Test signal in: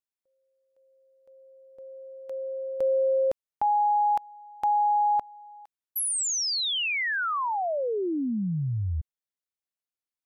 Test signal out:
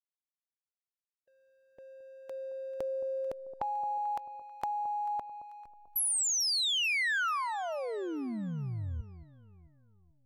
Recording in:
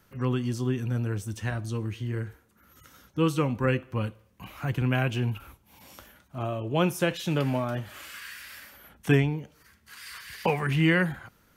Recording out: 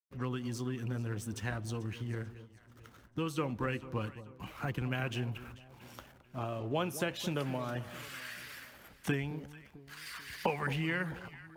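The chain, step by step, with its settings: expander -59 dBFS; backlash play -47.5 dBFS; compressor 2.5:1, threshold -29 dBFS; harmonic-percussive split harmonic -6 dB; echo with dull and thin repeats by turns 0.22 s, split 990 Hz, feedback 63%, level -13 dB

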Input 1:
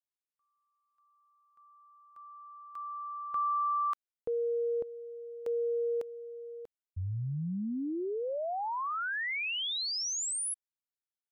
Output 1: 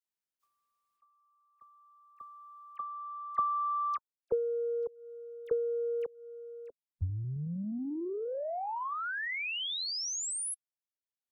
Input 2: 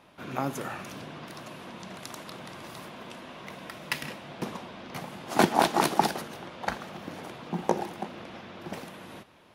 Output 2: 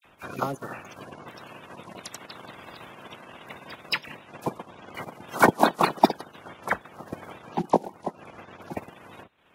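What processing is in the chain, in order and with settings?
bin magnitudes rounded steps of 30 dB; dispersion lows, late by 50 ms, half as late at 2000 Hz; transient shaper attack +8 dB, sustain -10 dB; gain -1 dB

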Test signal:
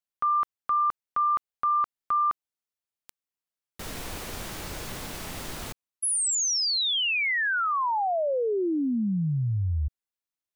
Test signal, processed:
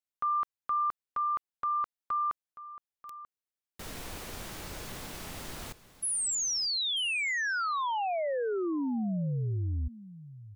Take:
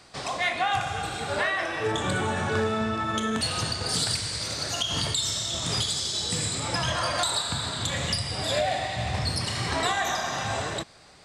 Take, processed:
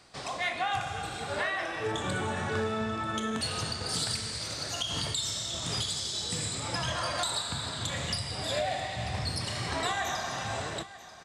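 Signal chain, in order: echo 0.938 s -16.5 dB; gain -5 dB

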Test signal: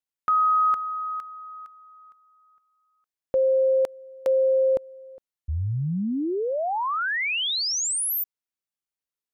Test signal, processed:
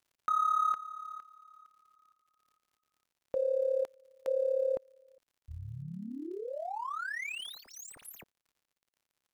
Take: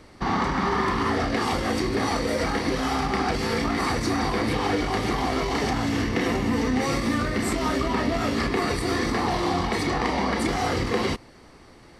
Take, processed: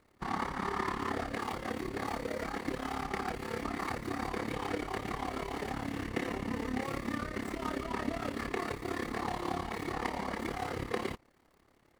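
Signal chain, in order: median filter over 9 samples; low shelf 420 Hz -4 dB; crackle 140/s -45 dBFS; AM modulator 35 Hz, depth 65%; upward expander 1.5:1, over -41 dBFS; gain -4 dB

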